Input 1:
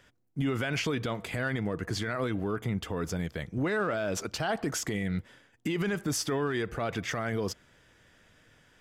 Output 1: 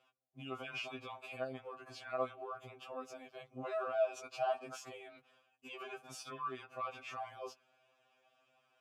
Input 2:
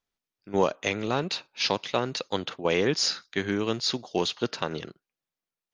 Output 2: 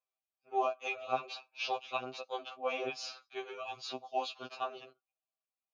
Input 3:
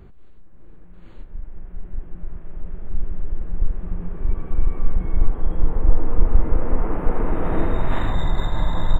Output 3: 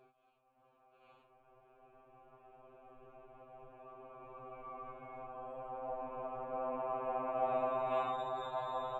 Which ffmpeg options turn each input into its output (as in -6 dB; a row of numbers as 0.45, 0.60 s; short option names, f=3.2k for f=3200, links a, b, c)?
-filter_complex "[0:a]asplit=3[a][b][c];[a]bandpass=f=730:t=q:w=8,volume=0dB[d];[b]bandpass=f=1.09k:t=q:w=8,volume=-6dB[e];[c]bandpass=f=2.44k:t=q:w=8,volume=-9dB[f];[d][e][f]amix=inputs=3:normalize=0,aemphasis=mode=production:type=50kf,afftfilt=real='re*2.45*eq(mod(b,6),0)':imag='im*2.45*eq(mod(b,6),0)':win_size=2048:overlap=0.75,volume=5dB"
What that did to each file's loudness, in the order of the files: -10.5, -10.5, -13.0 LU